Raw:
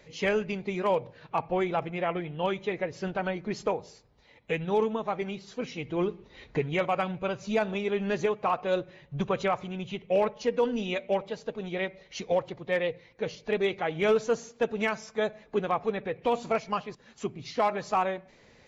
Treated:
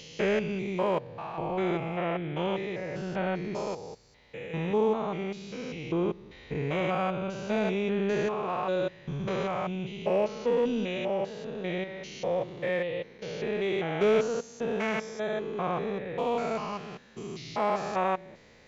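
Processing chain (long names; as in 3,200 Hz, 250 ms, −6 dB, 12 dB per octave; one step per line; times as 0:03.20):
spectrum averaged block by block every 200 ms
level +3 dB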